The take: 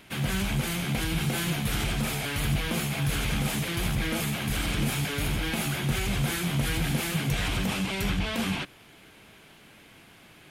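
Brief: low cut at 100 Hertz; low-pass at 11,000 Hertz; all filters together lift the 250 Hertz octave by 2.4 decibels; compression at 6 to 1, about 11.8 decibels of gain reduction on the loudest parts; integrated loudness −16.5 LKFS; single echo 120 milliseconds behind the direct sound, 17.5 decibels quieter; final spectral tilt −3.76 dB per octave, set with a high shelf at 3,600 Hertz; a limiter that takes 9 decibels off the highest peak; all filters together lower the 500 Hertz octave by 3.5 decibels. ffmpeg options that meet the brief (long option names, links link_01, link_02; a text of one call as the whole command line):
ffmpeg -i in.wav -af "highpass=100,lowpass=11000,equalizer=frequency=250:width_type=o:gain=5.5,equalizer=frequency=500:width_type=o:gain=-7.5,highshelf=frequency=3600:gain=7.5,acompressor=threshold=-35dB:ratio=6,alimiter=level_in=9dB:limit=-24dB:level=0:latency=1,volume=-9dB,aecho=1:1:120:0.133,volume=25dB" out.wav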